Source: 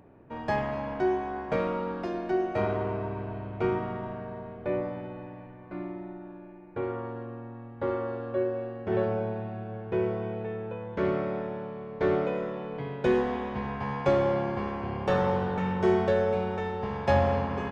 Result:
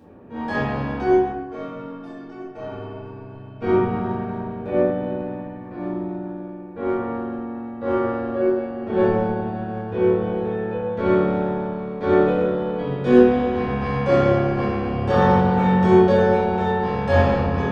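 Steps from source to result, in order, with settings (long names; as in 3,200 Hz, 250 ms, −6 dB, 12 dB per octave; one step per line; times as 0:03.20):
high-pass filter 57 Hz
notch filter 2,100 Hz, Q 8.8
transient designer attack −8 dB, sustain −12 dB
0:01.28–0:03.62: stiff-string resonator 130 Hz, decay 0.25 s, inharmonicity 0.03
convolution reverb RT60 0.80 s, pre-delay 4 ms, DRR −9.5 dB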